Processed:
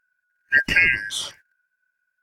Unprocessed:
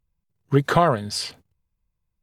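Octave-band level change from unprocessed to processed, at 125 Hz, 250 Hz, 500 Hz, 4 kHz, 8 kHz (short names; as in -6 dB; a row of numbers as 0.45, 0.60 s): -15.5, -12.5, -19.5, +2.5, +1.0 dB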